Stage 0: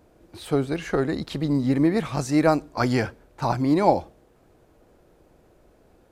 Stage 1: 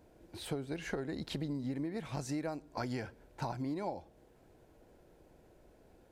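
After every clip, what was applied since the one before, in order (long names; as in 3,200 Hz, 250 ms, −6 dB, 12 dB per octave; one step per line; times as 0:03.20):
notch filter 1,200 Hz, Q 6.5
downward compressor 16 to 1, threshold −29 dBFS, peak gain reduction 17.5 dB
level −5 dB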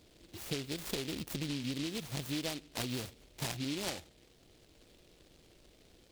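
short delay modulated by noise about 3,300 Hz, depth 0.25 ms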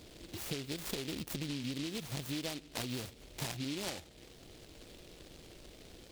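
downward compressor 2 to 1, threshold −52 dBFS, peak gain reduction 11 dB
level +8 dB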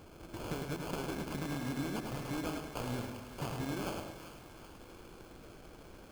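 sample-rate reduction 1,900 Hz, jitter 0%
echo with a time of its own for lows and highs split 950 Hz, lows 182 ms, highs 390 ms, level −10.5 dB
feedback echo at a low word length 105 ms, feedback 35%, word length 10 bits, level −4.5 dB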